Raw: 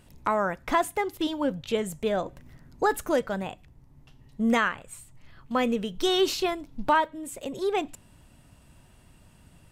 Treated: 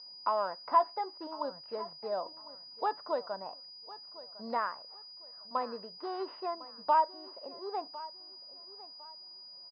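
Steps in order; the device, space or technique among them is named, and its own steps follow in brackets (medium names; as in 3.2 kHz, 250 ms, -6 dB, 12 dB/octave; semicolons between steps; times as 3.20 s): tone controls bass +7 dB, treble -13 dB; toy sound module (decimation joined by straight lines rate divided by 6×; class-D stage that switches slowly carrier 4.9 kHz; cabinet simulation 610–4400 Hz, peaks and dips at 630 Hz +5 dB, 990 Hz +9 dB, 1.6 kHz -4 dB, 2.3 kHz -10 dB, 3.3 kHz -9 dB); 0.61–1.16 s: doubling 16 ms -9 dB; feedback delay 1054 ms, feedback 29%, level -18 dB; trim -7.5 dB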